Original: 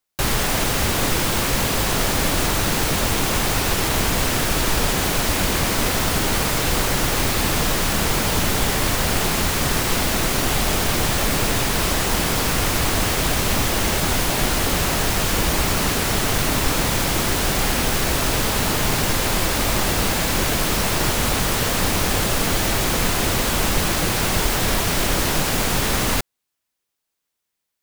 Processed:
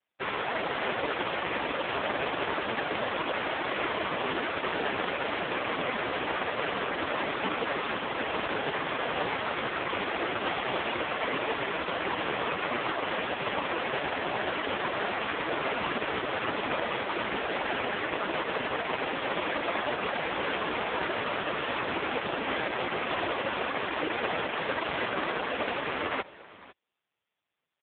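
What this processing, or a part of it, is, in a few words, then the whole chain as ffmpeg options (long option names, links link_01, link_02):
satellite phone: -af "highpass=320,lowpass=3200,aecho=1:1:499:0.112" -ar 8000 -c:a libopencore_amrnb -b:a 4750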